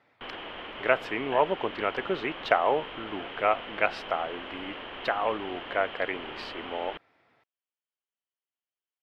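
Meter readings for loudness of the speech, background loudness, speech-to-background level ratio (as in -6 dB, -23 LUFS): -29.5 LUFS, -39.5 LUFS, 10.0 dB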